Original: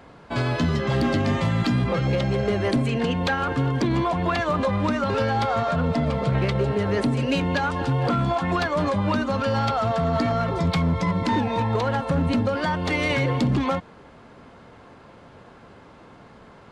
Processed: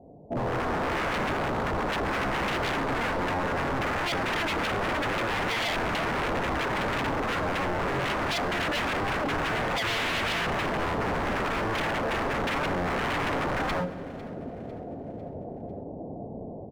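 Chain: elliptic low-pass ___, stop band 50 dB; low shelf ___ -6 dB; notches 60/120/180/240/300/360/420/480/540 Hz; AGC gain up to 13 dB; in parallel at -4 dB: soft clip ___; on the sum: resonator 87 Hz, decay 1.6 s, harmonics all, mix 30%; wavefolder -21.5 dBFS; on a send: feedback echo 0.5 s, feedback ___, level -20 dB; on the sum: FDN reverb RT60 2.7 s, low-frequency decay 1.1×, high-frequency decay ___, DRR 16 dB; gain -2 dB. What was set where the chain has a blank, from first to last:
720 Hz, 65 Hz, -20.5 dBFS, 47%, 0.75×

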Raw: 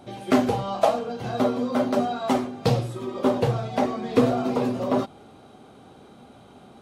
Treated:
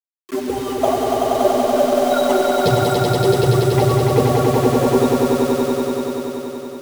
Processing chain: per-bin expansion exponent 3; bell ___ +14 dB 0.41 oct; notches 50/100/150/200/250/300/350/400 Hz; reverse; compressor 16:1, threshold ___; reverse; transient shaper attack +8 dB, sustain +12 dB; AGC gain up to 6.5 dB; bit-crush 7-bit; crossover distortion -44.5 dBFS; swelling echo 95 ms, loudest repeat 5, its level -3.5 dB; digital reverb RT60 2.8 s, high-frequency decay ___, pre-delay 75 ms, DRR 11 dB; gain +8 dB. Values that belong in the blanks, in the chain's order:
380 Hz, -35 dBFS, 0.5×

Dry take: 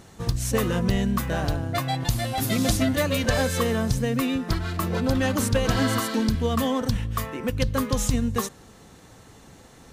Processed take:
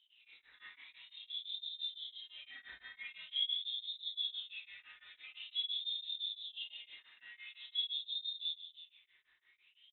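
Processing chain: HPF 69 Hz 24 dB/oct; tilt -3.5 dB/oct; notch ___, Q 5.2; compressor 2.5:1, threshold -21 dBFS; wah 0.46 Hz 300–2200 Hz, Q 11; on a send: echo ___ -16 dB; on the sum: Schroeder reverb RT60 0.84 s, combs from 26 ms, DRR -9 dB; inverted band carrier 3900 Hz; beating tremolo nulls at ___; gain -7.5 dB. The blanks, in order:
180 Hz, 0.316 s, 5.9 Hz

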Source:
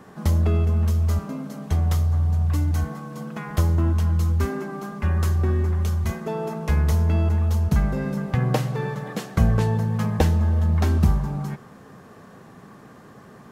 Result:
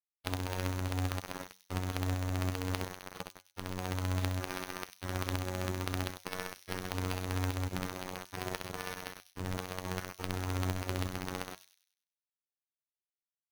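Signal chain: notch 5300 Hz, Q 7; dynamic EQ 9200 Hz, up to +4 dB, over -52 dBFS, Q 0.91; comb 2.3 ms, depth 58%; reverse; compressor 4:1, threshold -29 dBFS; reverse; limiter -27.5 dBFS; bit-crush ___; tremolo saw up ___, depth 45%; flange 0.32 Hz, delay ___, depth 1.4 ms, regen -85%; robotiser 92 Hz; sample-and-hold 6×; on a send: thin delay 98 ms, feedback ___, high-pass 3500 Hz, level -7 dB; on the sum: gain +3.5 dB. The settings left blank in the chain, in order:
5-bit, 2.8 Hz, 6.1 ms, 39%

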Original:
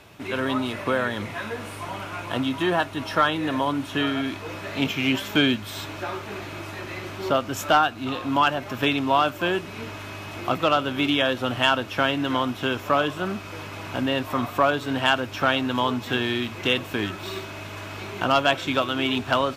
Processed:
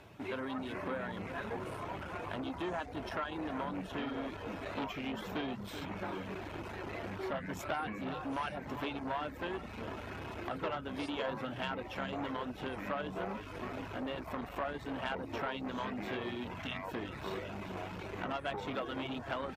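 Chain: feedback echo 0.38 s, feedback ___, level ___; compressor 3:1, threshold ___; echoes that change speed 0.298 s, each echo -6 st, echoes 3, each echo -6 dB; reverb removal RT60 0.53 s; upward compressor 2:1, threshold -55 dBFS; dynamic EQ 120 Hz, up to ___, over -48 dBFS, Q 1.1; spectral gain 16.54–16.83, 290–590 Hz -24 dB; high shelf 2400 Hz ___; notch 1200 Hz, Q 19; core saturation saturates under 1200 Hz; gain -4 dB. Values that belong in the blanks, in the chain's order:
58%, -17 dB, -28 dBFS, -4 dB, -9.5 dB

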